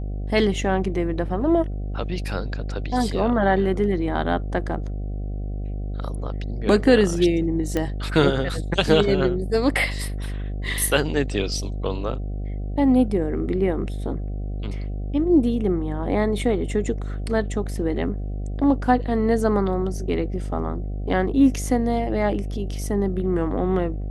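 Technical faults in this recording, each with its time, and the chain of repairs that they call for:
mains buzz 50 Hz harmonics 15 −28 dBFS
0:07.77: click −11 dBFS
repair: click removal
hum removal 50 Hz, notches 15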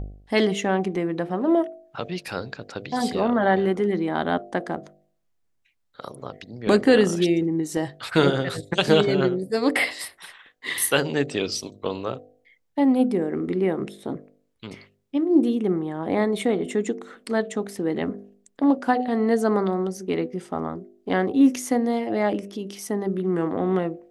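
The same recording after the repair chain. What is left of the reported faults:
none of them is left

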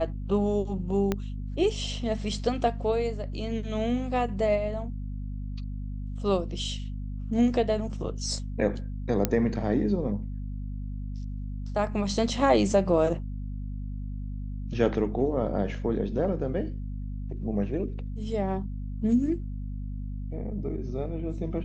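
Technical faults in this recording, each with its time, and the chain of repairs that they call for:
mains hum 50 Hz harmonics 5 −34 dBFS
0:01.12: click −13 dBFS
0:09.25: click −8 dBFS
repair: click removal
hum removal 50 Hz, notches 5

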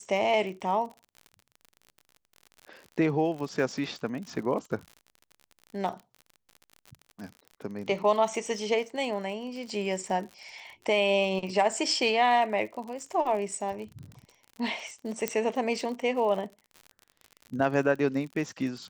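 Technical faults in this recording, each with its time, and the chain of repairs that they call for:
surface crackle 52 per second −37 dBFS
0:15.28: click −11 dBFS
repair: click removal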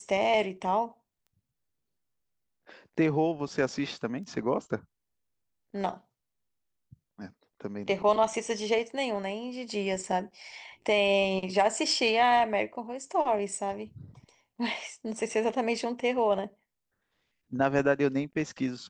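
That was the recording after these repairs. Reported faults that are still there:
none of them is left

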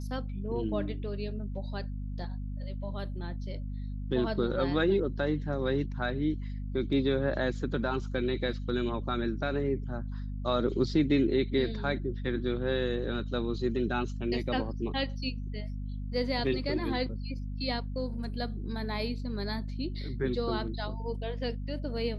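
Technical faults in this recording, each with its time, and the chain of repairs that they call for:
mains hum 50 Hz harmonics 5 −36 dBFS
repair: hum removal 50 Hz, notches 5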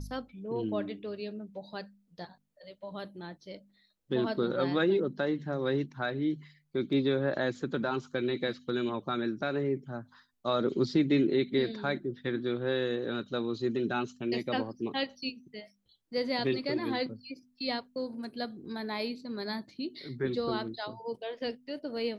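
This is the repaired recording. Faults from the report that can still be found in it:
none of them is left

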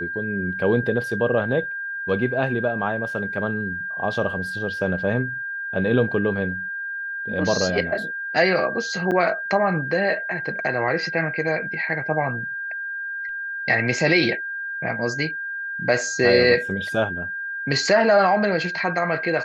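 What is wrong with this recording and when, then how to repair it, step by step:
whistle 1,600 Hz −27 dBFS
0:09.11–0:09.12: drop-out 7.6 ms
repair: notch filter 1,600 Hz, Q 30
repair the gap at 0:09.11, 7.6 ms

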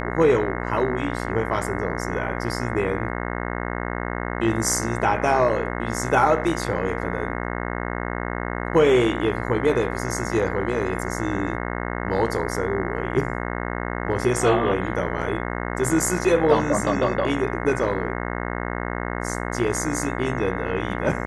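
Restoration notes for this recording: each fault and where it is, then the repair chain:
mains buzz 60 Hz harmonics 36 −28 dBFS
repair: hum removal 60 Hz, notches 36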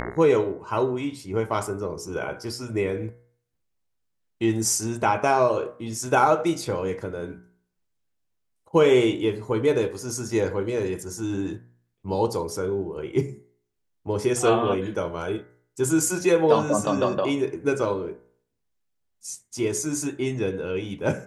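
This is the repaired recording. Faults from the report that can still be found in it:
none of them is left

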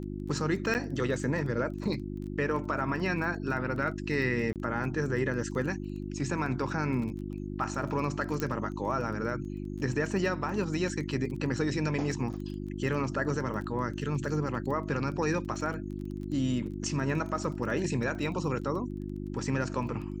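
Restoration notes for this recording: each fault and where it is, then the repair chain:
surface crackle 20 per second −38 dBFS
mains hum 50 Hz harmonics 7 −37 dBFS
0:00.74–0:00.75: drop-out 9 ms
0:04.53–0:04.56: drop-out 28 ms
0:08.40: click −17 dBFS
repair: click removal
hum removal 50 Hz, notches 7
repair the gap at 0:00.74, 9 ms
repair the gap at 0:04.53, 28 ms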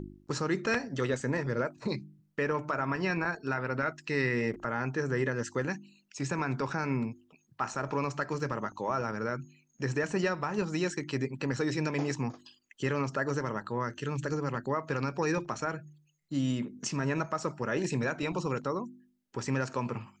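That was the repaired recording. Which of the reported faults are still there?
0:08.40: click

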